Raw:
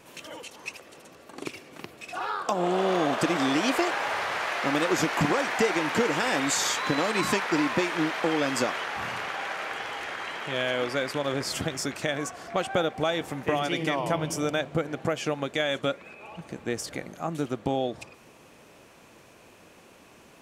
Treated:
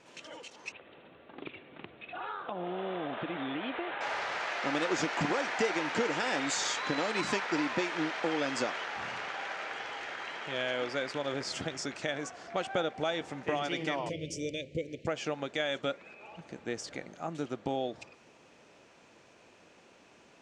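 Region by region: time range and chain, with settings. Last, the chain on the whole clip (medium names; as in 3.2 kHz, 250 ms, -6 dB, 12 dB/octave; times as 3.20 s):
0.72–4.01 s: bass shelf 160 Hz +7.5 dB + compression 2:1, threshold -31 dBFS + steep low-pass 3.8 kHz 96 dB/octave
14.09–15.07 s: elliptic band-stop 530–2200 Hz + resonant low shelf 120 Hz +7 dB, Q 1.5
whole clip: low-pass 7.3 kHz 24 dB/octave; bass shelf 140 Hz -7.5 dB; band-stop 1.1 kHz, Q 16; trim -5 dB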